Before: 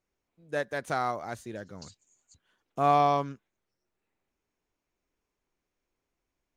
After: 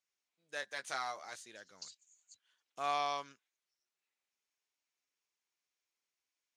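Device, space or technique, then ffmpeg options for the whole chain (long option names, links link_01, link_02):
piezo pickup straight into a mixer: -filter_complex "[0:a]lowpass=5500,aderivative,asettb=1/sr,asplit=3[link_01][link_02][link_03];[link_01]atrim=end=0.614[link_04];[link_02]atrim=start=0.61:end=1.36,asetpts=PTS-STARTPTS,afade=type=in:duration=0.004:curve=qsin,afade=type=out:start_time=0.746:duration=0.004:curve=qsin,asplit=2[link_05][link_06];[link_06]adelay=15,volume=-6dB[link_07];[link_05][link_07]amix=inputs=2:normalize=0,atrim=end_sample=33075[link_08];[link_03]atrim=start=1.356[link_09];[link_04][link_08]acrossfade=duration=0.004:curve1=hsin:curve2=qsin[link_10];[link_10][link_09]acrossfade=duration=0.004:curve1=qsin:curve2=hsin,volume=6.5dB"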